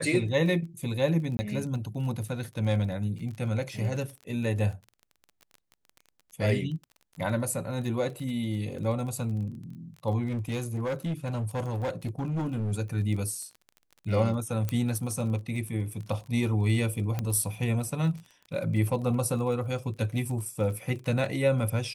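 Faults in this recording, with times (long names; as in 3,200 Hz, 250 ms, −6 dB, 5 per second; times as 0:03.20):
surface crackle 26 per second −37 dBFS
0:01.37–0:01.39: drop-out 20 ms
0:10.28–0:12.73: clipping −26.5 dBFS
0:14.69: click −16 dBFS
0:17.19: click −17 dBFS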